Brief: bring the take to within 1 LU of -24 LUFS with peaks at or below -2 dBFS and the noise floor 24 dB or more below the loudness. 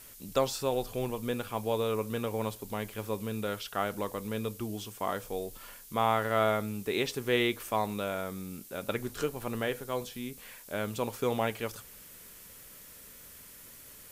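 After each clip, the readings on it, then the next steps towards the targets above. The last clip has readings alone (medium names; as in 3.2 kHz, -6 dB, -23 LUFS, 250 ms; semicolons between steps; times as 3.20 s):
noise floor -51 dBFS; noise floor target -57 dBFS; loudness -33.0 LUFS; peak level -13.0 dBFS; loudness target -24.0 LUFS
-> noise reduction 6 dB, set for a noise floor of -51 dBFS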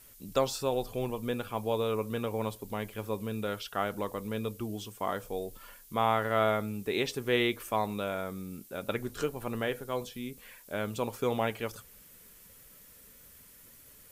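noise floor -55 dBFS; noise floor target -57 dBFS
-> noise reduction 6 dB, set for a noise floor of -55 dBFS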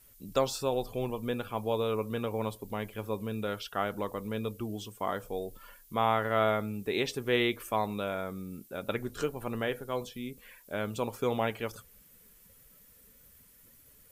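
noise floor -59 dBFS; loudness -33.0 LUFS; peak level -13.0 dBFS; loudness target -24.0 LUFS
-> trim +9 dB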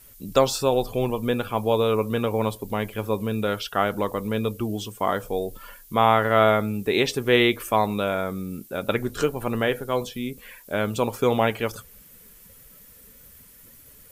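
loudness -24.0 LUFS; peak level -4.0 dBFS; noise floor -50 dBFS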